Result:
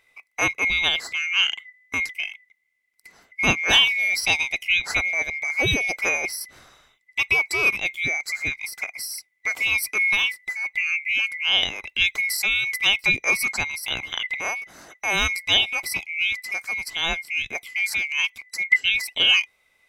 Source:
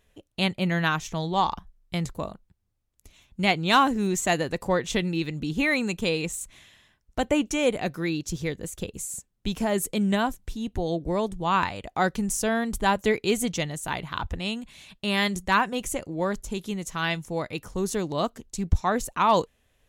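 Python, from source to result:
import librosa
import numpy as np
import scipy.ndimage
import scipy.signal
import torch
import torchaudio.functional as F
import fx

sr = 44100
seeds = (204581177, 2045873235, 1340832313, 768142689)

y = fx.band_swap(x, sr, width_hz=2000)
y = y * 10.0 ** (2.5 / 20.0)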